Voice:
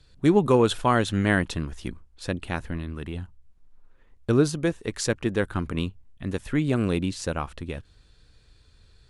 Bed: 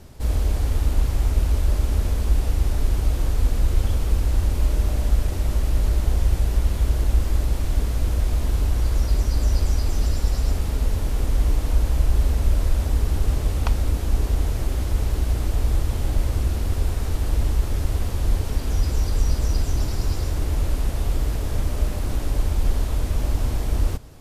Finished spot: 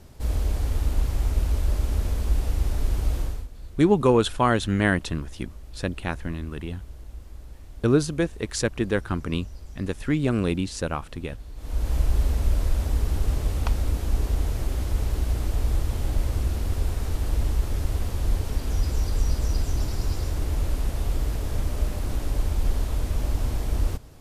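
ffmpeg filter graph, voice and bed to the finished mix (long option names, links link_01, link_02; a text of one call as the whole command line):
ffmpeg -i stem1.wav -i stem2.wav -filter_complex "[0:a]adelay=3550,volume=0.5dB[link_01];[1:a]volume=14.5dB,afade=type=out:start_time=3.17:duration=0.3:silence=0.133352,afade=type=in:start_time=11.55:duration=0.4:silence=0.125893[link_02];[link_01][link_02]amix=inputs=2:normalize=0" out.wav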